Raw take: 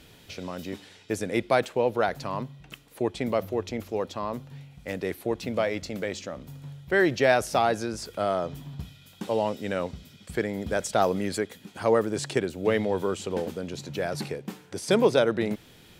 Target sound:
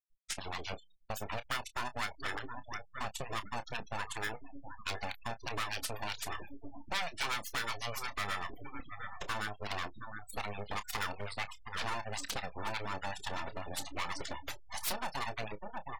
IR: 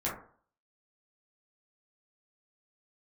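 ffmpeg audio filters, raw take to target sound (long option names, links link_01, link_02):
-filter_complex "[0:a]agate=range=-33dB:threshold=-47dB:ratio=3:detection=peak,acrossover=split=460[link_01][link_02];[link_01]aeval=exprs='val(0)*(1-1/2+1/2*cos(2*PI*8.1*n/s))':channel_layout=same[link_03];[link_02]aeval=exprs='val(0)*(1-1/2-1/2*cos(2*PI*8.1*n/s))':channel_layout=same[link_04];[link_03][link_04]amix=inputs=2:normalize=0,asplit=2[link_05][link_06];[link_06]acrusher=samples=25:mix=1:aa=0.000001,volume=-7dB[link_07];[link_05][link_07]amix=inputs=2:normalize=0,aeval=exprs='abs(val(0))':channel_layout=same,asplit=2[link_08][link_09];[link_09]adelay=716,lowpass=frequency=3000:poles=1,volume=-16.5dB,asplit=2[link_10][link_11];[link_11]adelay=716,lowpass=frequency=3000:poles=1,volume=0.51,asplit=2[link_12][link_13];[link_13]adelay=716,lowpass=frequency=3000:poles=1,volume=0.51,asplit=2[link_14][link_15];[link_15]adelay=716,lowpass=frequency=3000:poles=1,volume=0.51,asplit=2[link_16][link_17];[link_17]adelay=716,lowpass=frequency=3000:poles=1,volume=0.51[link_18];[link_10][link_12][link_14][link_16][link_18]amix=inputs=5:normalize=0[link_19];[link_08][link_19]amix=inputs=2:normalize=0,acompressor=threshold=-32dB:ratio=10,tiltshelf=frequency=870:gain=-8,afftfilt=real='re*gte(hypot(re,im),0.00794)':imag='im*gte(hypot(re,im),0.00794)':win_size=1024:overlap=0.75,asplit=2[link_20][link_21];[link_21]adelay=29,volume=-13.5dB[link_22];[link_20][link_22]amix=inputs=2:normalize=0,asoftclip=type=hard:threshold=-32.5dB,volume=4dB"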